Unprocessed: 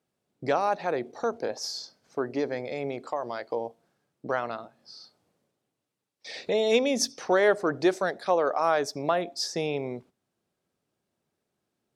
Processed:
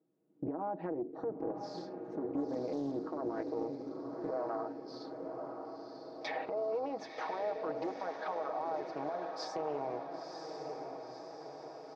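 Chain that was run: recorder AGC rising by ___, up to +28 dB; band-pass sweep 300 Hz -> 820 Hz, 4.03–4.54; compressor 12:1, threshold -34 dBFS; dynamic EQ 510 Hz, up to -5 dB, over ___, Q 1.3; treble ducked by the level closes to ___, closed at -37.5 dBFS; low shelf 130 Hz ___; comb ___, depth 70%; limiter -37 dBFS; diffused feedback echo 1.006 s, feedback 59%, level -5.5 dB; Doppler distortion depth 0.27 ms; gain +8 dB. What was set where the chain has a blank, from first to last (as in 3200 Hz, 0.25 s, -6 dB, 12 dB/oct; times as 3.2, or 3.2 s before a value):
9 dB/s, -51 dBFS, 790 Hz, -5 dB, 6.3 ms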